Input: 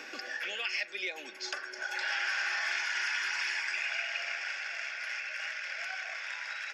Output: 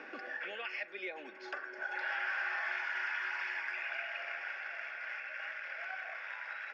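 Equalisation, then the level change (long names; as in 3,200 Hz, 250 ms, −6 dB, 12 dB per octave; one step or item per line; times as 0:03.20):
low-pass filter 1,700 Hz 12 dB per octave
0.0 dB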